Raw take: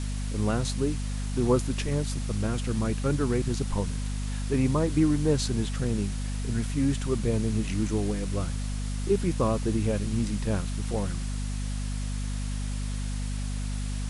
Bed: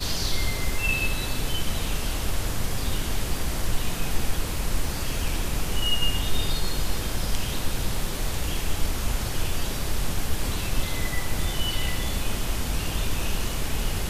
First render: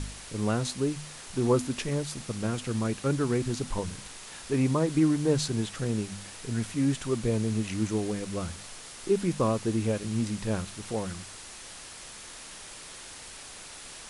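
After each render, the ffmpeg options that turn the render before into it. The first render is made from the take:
-af "bandreject=f=50:t=h:w=4,bandreject=f=100:t=h:w=4,bandreject=f=150:t=h:w=4,bandreject=f=200:t=h:w=4,bandreject=f=250:t=h:w=4"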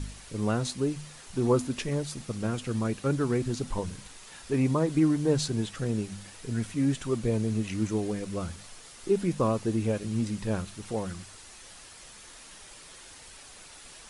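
-af "afftdn=nr=6:nf=-45"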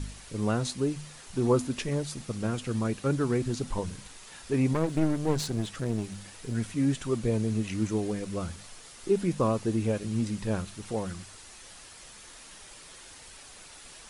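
-filter_complex "[0:a]asettb=1/sr,asplit=3[a][b][c];[a]atrim=end=4.734[d];[b]atrim=start=4.73:end=6.55,asetpts=PTS-STARTPTS,afade=t=in:d=0.004:c=qsin,afade=t=out:st=1.816:d=0.004:c=qsin,aeval=exprs='clip(val(0),-1,0.0211)':c=same[e];[c]atrim=start=6.546[f];[d][e]acrossfade=d=0.004:c1=hsin:c2=qsin[g];[g][f]acrossfade=d=0.004:c1=qsin:c2=hsin"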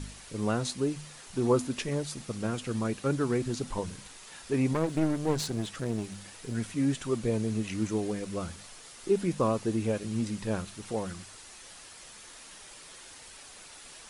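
-af "lowshelf=f=130:g=-6"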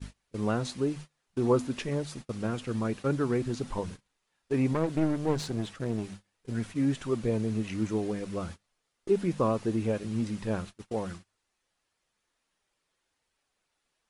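-af "agate=range=-28dB:threshold=-40dB:ratio=16:detection=peak,aemphasis=mode=reproduction:type=cd"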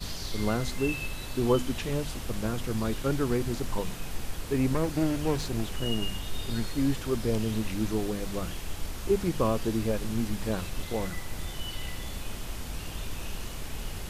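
-filter_complex "[1:a]volume=-9.5dB[a];[0:a][a]amix=inputs=2:normalize=0"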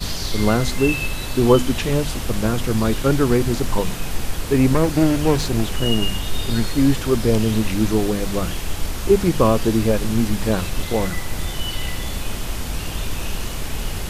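-af "volume=10.5dB"

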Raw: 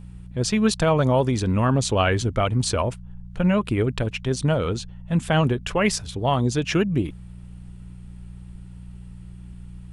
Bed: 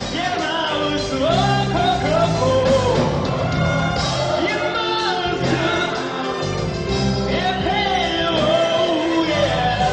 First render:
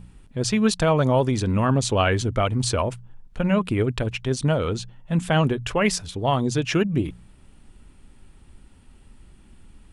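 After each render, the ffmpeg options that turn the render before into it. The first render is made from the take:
-af "bandreject=f=60:t=h:w=4,bandreject=f=120:t=h:w=4,bandreject=f=180:t=h:w=4"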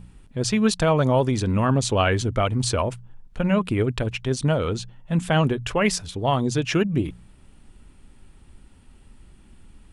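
-af anull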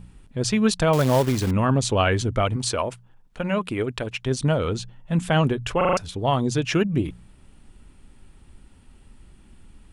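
-filter_complex "[0:a]asettb=1/sr,asplit=3[a][b][c];[a]atrim=end=0.934[d];[b]atrim=start=0.93:end=1.51,asetpts=PTS-STARTPTS,afade=t=in:d=0.004:c=qsin,afade=t=out:st=0.576:d=0.004:c=qsin,acrusher=bits=3:mode=log:mix=0:aa=0.000001[e];[c]atrim=start=1.506[f];[d][e]acrossfade=d=0.004:c1=hsin:c2=qsin[g];[g][f]acrossfade=d=0.004:c1=qsin:c2=hsin,asettb=1/sr,asplit=3[h][i][j];[h]atrim=end=2.564[k];[i]atrim=start=2.56:end=4.26,asetpts=PTS-STARTPTS,afade=t=in:d=0.004:c=qsin,afade=t=out:st=1.696:d=0.004:c=qsin,lowshelf=f=190:g=-11[l];[j]atrim=start=4.256[m];[k][l]acrossfade=d=0.004:c1=hsin:c2=qsin[n];[n][m]acrossfade=d=0.004:c1=qsin:c2=hsin,asplit=6[o][p][q][r][s][t];[o]atrim=end=5.812[u];[p]atrim=start=5.768:end=5.812[v];[q]atrim=start=5.768:end=5.812[w];[r]atrim=start=5.768:end=5.812[x];[s]atrim=start=5.768:end=5.812[y];[t]atrim=start=5.968[z];[u][v]acrossfade=d=0.004:c1=hsin:c2=hsin[aa];[aa][w]acrossfade=d=0.004:c1=hsin:c2=hsin[ab];[ab][x]acrossfade=d=0.004:c1=hsin:c2=hsin[ac];[ac][y]acrossfade=d=0.004:c1=hsin:c2=hsin[ad];[ad][z]acrossfade=d=0.004:c1=hsin:c2=hsin"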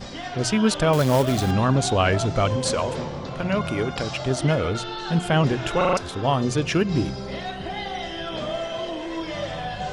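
-filter_complex "[1:a]volume=-12dB[a];[0:a][a]amix=inputs=2:normalize=0"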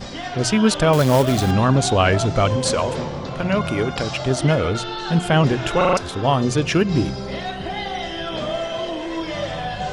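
-af "volume=3.5dB"

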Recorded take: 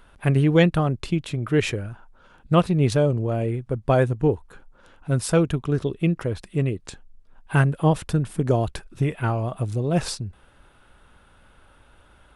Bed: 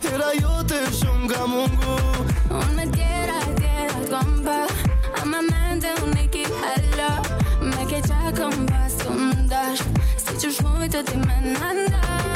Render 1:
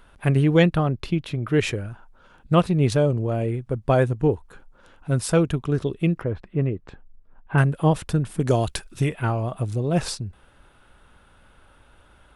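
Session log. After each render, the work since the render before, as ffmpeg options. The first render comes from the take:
-filter_complex "[0:a]asettb=1/sr,asplit=3[a][b][c];[a]atrim=end=0.744[d];[b]atrim=start=0.74:end=1.52,asetpts=PTS-STARTPTS,afade=t=in:d=0.004:c=qsin,afade=t=out:st=0.776:d=0.004:c=qsin,equalizer=f=7.9k:t=o:w=0.63:g=-9.5[e];[c]atrim=start=1.516[f];[d][e]acrossfade=d=0.004:c1=hsin:c2=qsin[g];[g][f]acrossfade=d=0.004:c1=qsin:c2=hsin,asettb=1/sr,asplit=3[h][i][j];[h]atrim=end=6.214[k];[i]atrim=start=6.21:end=7.58,asetpts=PTS-STARTPTS,afade=t=in:d=0.004:c=qsin,afade=t=out:st=1.366:d=0.004:c=qsin,lowpass=1.8k[l];[j]atrim=start=7.576[m];[k][l]acrossfade=d=0.004:c1=hsin:c2=qsin[n];[n][m]acrossfade=d=0.004:c1=qsin:c2=hsin,asettb=1/sr,asplit=3[o][p][q];[o]atrim=end=8.404[r];[p]atrim=start=8.4:end=9.09,asetpts=PTS-STARTPTS,afade=t=in:d=0.004:c=qsin,afade=t=out:st=0.686:d=0.004:c=qsin,highshelf=f=2.3k:g=10.5[s];[q]atrim=start=9.086[t];[r][s]acrossfade=d=0.004:c1=hsin:c2=qsin[u];[u][t]acrossfade=d=0.004:c1=qsin:c2=hsin"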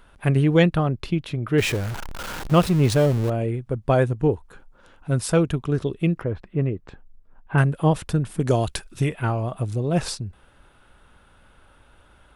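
-filter_complex "[0:a]asettb=1/sr,asplit=3[a][b][c];[a]atrim=end=1.584[d];[b]atrim=start=1.58:end=3.3,asetpts=PTS-STARTPTS,afade=t=in:d=0.004:c=qsin,afade=t=out:st=1.716:d=0.004:c=qsin,aeval=exprs='val(0)+0.5*0.0473*sgn(val(0))':c=same[e];[c]atrim=start=3.296[f];[d][e]acrossfade=d=0.004:c1=hsin:c2=qsin[g];[g][f]acrossfade=d=0.004:c1=qsin:c2=hsin"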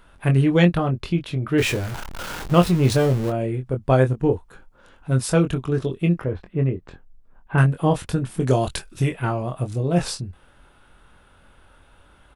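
-filter_complex "[0:a]asplit=2[a][b];[b]adelay=23,volume=-6dB[c];[a][c]amix=inputs=2:normalize=0"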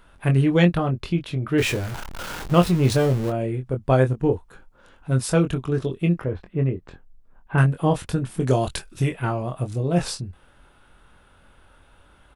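-af "volume=-1dB"

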